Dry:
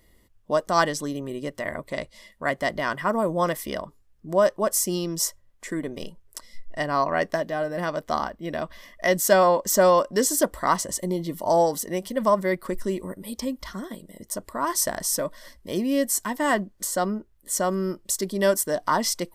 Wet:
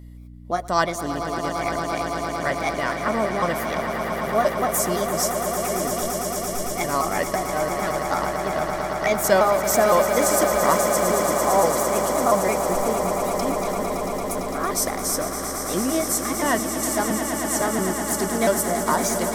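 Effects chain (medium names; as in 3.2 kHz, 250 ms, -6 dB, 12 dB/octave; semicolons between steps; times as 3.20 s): pitch shift switched off and on +2.5 st, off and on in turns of 171 ms; hum 60 Hz, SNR 15 dB; echo with a slow build-up 113 ms, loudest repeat 8, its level -10.5 dB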